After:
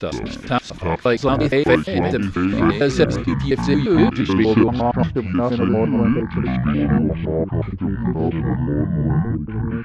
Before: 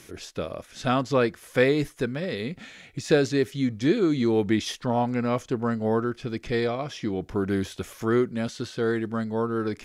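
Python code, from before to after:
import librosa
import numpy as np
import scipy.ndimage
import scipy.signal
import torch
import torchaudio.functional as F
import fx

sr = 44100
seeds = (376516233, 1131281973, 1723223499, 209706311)

y = fx.block_reorder(x, sr, ms=117.0, group=4)
y = fx.filter_sweep_lowpass(y, sr, from_hz=6300.0, to_hz=200.0, start_s=3.58, end_s=7.23, q=0.82)
y = fx.echo_pitch(y, sr, ms=81, semitones=-7, count=2, db_per_echo=-3.0)
y = y * librosa.db_to_amplitude(5.5)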